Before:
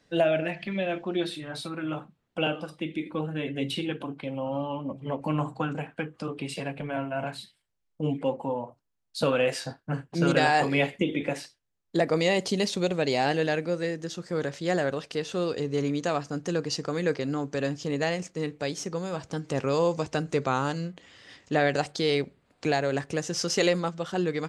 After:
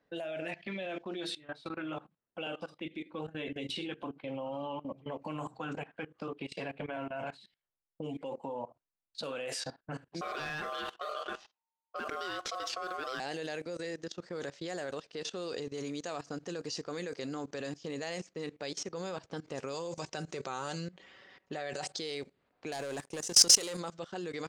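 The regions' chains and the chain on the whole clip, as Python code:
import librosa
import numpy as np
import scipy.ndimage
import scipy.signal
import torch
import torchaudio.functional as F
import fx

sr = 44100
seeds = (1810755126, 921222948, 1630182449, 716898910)

y = fx.chain(x, sr, fx.lowpass(hz=3100.0, slope=12),
    fx.ring_mod(carrier_hz=910.0),
    fx.leveller(passes=1), at=(10.21, 13.2))
y = fx.chain(y, sr, fx.lowpass(hz=10000.0, slope=24),
    fx.comb(ms=5.3, depth=0.42), at=(19.74, 21.98))
y = fx.chain(y, sr, fx.leveller(passes=3),
    fx.peak_eq(hz=9500.0, db=7.0, octaves=0.26),
    fx.level_steps(step_db=21), at=(22.72, 23.77))
y = fx.env_lowpass(y, sr, base_hz=1600.0, full_db=-21.5)
y = fx.bass_treble(y, sr, bass_db=-8, treble_db=9)
y = fx.level_steps(y, sr, step_db=19)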